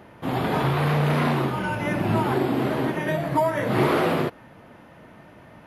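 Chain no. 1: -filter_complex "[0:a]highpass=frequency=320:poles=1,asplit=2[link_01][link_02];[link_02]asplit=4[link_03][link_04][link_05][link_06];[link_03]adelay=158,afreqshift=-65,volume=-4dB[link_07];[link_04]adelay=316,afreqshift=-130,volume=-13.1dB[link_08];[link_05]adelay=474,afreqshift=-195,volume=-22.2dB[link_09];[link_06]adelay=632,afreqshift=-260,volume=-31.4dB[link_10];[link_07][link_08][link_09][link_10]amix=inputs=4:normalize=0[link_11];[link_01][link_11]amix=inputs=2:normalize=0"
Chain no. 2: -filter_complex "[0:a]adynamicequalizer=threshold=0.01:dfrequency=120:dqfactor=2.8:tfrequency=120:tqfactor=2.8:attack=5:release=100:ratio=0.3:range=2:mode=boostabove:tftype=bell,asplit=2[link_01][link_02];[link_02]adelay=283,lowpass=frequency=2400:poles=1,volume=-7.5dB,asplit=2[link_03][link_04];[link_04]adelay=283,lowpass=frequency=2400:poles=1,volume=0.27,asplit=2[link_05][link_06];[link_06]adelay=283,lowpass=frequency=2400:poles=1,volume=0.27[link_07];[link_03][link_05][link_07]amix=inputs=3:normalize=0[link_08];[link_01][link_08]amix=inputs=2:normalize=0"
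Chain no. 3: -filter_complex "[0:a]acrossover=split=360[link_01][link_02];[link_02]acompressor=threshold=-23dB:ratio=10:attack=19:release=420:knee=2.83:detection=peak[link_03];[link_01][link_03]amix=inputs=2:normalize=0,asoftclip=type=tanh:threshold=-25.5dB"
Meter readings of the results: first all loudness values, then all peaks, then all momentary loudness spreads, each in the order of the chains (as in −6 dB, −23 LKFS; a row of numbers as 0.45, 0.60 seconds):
−24.5, −22.5, −29.5 LKFS; −10.5, −8.0, −25.5 dBFS; 7, 7, 20 LU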